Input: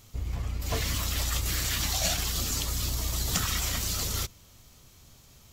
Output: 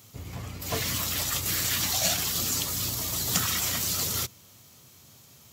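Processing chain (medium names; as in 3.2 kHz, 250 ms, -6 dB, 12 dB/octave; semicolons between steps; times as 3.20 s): high-pass 97 Hz 24 dB/octave; treble shelf 11 kHz +7 dB; trim +1.5 dB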